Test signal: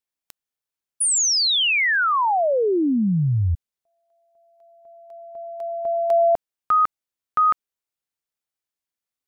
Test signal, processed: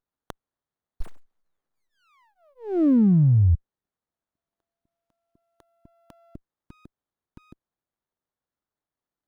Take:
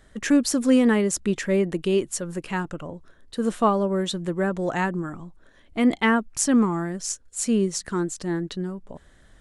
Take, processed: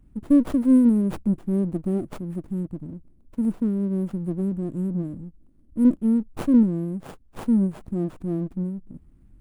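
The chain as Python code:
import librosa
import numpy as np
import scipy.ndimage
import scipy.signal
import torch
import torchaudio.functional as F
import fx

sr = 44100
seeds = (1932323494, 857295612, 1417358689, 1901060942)

y = scipy.signal.sosfilt(scipy.signal.cheby2(5, 40, [510.0, 6500.0], 'bandstop', fs=sr, output='sos'), x)
y = fx.running_max(y, sr, window=17)
y = F.gain(torch.from_numpy(y), 3.0).numpy()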